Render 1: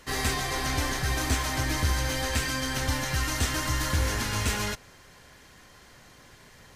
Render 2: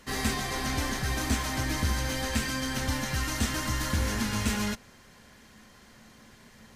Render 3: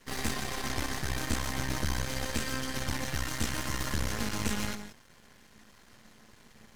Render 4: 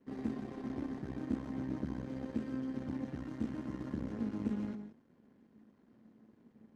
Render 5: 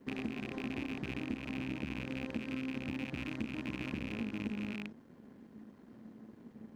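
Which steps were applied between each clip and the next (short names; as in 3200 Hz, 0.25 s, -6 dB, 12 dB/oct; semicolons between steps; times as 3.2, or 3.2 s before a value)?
bell 220 Hz +13 dB 0.29 oct; gain -2.5 dB
non-linear reverb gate 0.2 s rising, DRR 10 dB; half-wave rectifier
band-pass 260 Hz, Q 2; gain +2.5 dB
rattling part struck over -46 dBFS, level -32 dBFS; compressor 4:1, threshold -46 dBFS, peak gain reduction 15 dB; gain +9 dB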